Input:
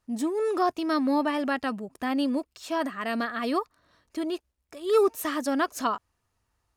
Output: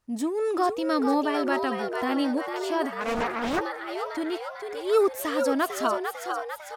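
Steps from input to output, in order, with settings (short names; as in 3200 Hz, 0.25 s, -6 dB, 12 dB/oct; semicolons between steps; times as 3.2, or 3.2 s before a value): frequency-shifting echo 0.449 s, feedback 60%, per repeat +100 Hz, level -6 dB; 3–3.61 Doppler distortion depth 0.88 ms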